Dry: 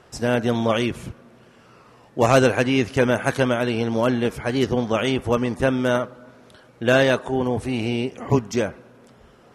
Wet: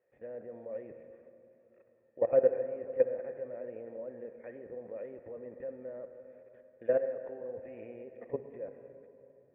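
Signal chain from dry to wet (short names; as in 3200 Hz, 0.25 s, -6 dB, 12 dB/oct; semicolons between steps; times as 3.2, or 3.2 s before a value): median filter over 9 samples; treble ducked by the level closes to 1200 Hz, closed at -18 dBFS; low shelf 120 Hz -10 dB; level quantiser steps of 17 dB; vocal tract filter e; reverb RT60 3.1 s, pre-delay 53 ms, DRR 9.5 dB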